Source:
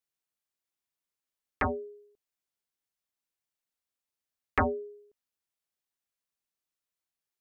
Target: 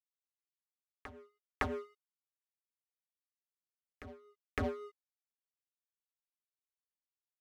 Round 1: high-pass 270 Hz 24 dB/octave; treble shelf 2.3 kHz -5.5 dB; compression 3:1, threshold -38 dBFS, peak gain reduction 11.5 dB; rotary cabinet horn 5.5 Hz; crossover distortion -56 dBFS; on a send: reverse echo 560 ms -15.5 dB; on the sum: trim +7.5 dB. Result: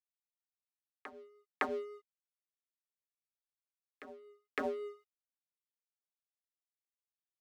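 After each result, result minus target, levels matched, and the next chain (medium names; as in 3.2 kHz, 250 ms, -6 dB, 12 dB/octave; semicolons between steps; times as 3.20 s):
crossover distortion: distortion -6 dB; 250 Hz band -2.5 dB
high-pass 270 Hz 24 dB/octave; treble shelf 2.3 kHz -5.5 dB; compression 3:1, threshold -38 dBFS, peak gain reduction 11.5 dB; rotary cabinet horn 5.5 Hz; crossover distortion -48.5 dBFS; on a send: reverse echo 560 ms -15.5 dB; on the sum: trim +7.5 dB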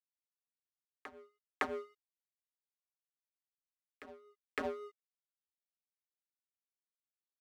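250 Hz band -3.0 dB
treble shelf 2.3 kHz -5.5 dB; compression 3:1, threshold -38 dBFS, peak gain reduction 11.5 dB; rotary cabinet horn 5.5 Hz; crossover distortion -48.5 dBFS; on a send: reverse echo 560 ms -15.5 dB; on the sum: trim +7.5 dB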